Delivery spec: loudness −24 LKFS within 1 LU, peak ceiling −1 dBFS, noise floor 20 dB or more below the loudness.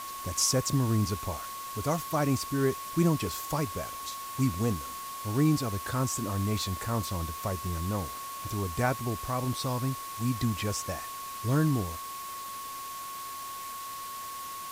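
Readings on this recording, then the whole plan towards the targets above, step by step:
interfering tone 1,100 Hz; level of the tone −38 dBFS; background noise floor −40 dBFS; target noise floor −51 dBFS; integrated loudness −31.0 LKFS; sample peak −13.0 dBFS; target loudness −24.0 LKFS
→ notch filter 1,100 Hz, Q 30
broadband denoise 11 dB, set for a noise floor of −40 dBFS
level +7 dB

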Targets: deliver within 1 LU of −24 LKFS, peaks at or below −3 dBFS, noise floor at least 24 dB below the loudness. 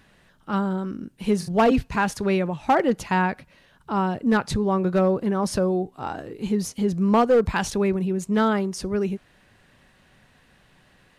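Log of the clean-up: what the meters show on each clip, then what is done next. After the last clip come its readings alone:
share of clipped samples 0.5%; peaks flattened at −12.5 dBFS; integrated loudness −23.5 LKFS; sample peak −12.5 dBFS; target loudness −24.0 LKFS
→ clipped peaks rebuilt −12.5 dBFS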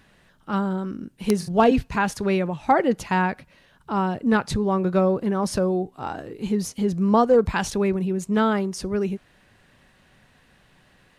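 share of clipped samples 0.0%; integrated loudness −23.0 LKFS; sample peak −3.5 dBFS; target loudness −24.0 LKFS
→ level −1 dB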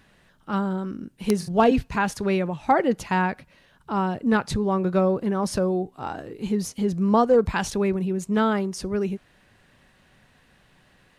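integrated loudness −24.0 LKFS; sample peak −4.5 dBFS; background noise floor −60 dBFS

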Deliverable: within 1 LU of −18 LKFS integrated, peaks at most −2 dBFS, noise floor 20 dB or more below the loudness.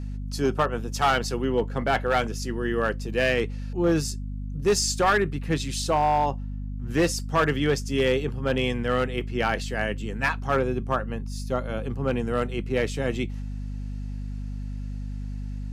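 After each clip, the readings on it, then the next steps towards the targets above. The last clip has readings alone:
share of clipped samples 0.9%; peaks flattened at −15.0 dBFS; mains hum 50 Hz; hum harmonics up to 250 Hz; level of the hum −30 dBFS; integrated loudness −26.5 LKFS; sample peak −15.0 dBFS; target loudness −18.0 LKFS
→ clipped peaks rebuilt −15 dBFS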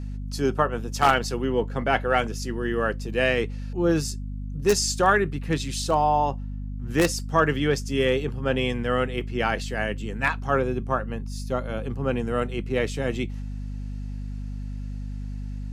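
share of clipped samples 0.0%; mains hum 50 Hz; hum harmonics up to 250 Hz; level of the hum −30 dBFS
→ mains-hum notches 50/100/150/200/250 Hz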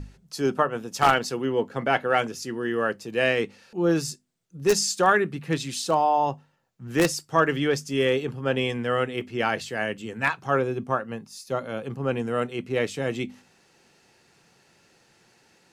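mains hum none found; integrated loudness −25.5 LKFS; sample peak −5.5 dBFS; target loudness −18.0 LKFS
→ level +7.5 dB
brickwall limiter −2 dBFS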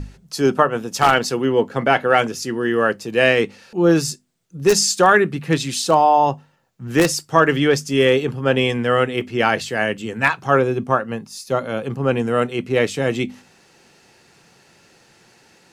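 integrated loudness −18.5 LKFS; sample peak −2.0 dBFS; background noise floor −54 dBFS

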